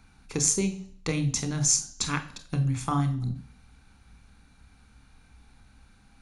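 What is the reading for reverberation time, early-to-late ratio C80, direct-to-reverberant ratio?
0.55 s, 16.5 dB, 7.5 dB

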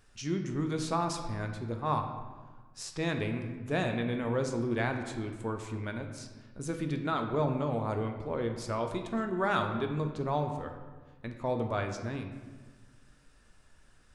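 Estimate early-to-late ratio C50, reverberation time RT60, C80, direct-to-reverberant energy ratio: 7.0 dB, 1.4 s, 8.5 dB, 4.5 dB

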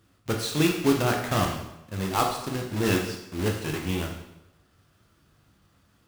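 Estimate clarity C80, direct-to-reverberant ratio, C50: 8.0 dB, 1.0 dB, 5.5 dB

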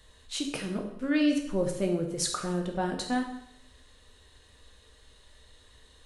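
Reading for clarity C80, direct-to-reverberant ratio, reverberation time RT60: 9.5 dB, 2.0 dB, 0.75 s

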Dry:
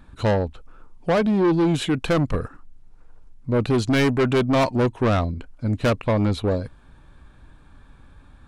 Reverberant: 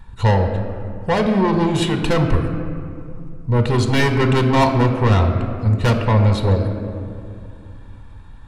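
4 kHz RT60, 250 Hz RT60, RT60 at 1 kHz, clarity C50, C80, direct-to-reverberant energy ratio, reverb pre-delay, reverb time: 1.3 s, 3.1 s, 2.3 s, 7.0 dB, 8.0 dB, 5.5 dB, 3 ms, 2.4 s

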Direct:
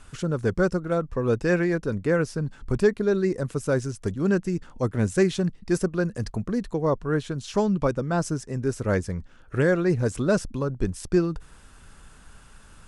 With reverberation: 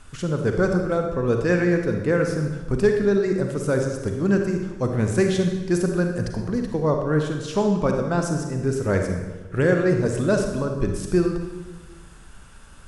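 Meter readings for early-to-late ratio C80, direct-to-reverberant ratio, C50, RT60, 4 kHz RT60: 6.5 dB, 3.5 dB, 4.5 dB, 1.2 s, 1.0 s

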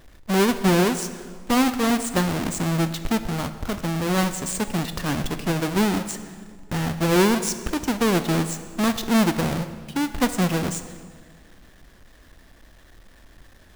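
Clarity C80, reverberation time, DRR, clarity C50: 12.5 dB, 1.8 s, 10.0 dB, 11.5 dB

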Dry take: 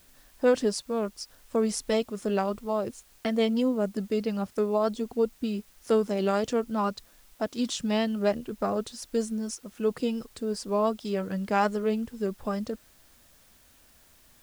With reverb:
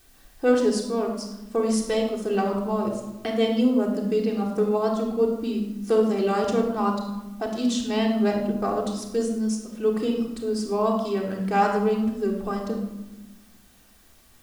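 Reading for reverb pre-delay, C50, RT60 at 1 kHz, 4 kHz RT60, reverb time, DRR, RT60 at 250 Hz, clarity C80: 3 ms, 5.0 dB, 1.0 s, 0.60 s, 1.1 s, -1.0 dB, 1.9 s, 7.5 dB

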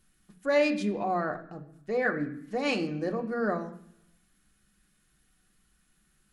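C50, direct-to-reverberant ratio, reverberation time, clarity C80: 12.0 dB, 3.0 dB, 0.70 s, 15.0 dB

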